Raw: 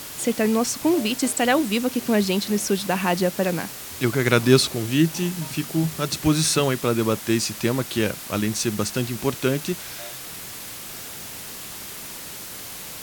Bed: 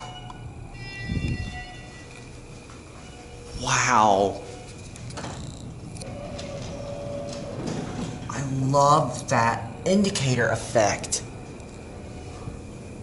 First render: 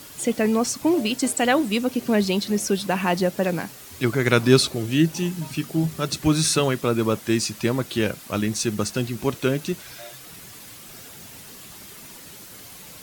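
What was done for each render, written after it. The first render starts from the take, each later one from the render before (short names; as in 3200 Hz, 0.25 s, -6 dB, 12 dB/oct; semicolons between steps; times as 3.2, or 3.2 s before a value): denoiser 8 dB, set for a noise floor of -37 dBFS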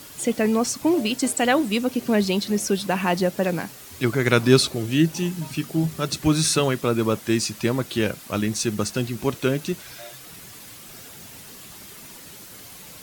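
nothing audible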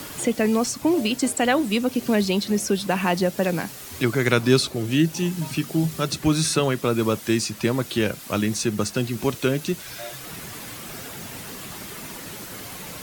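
three-band squash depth 40%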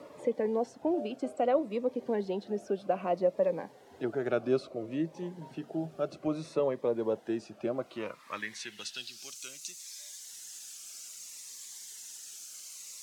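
band-pass sweep 600 Hz -> 6700 Hz, 7.72–9.37; cascading phaser falling 0.62 Hz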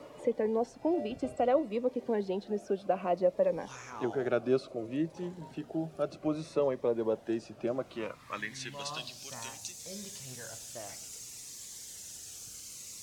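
add bed -25.5 dB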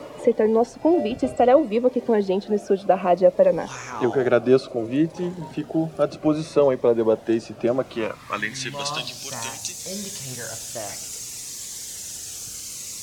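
gain +11.5 dB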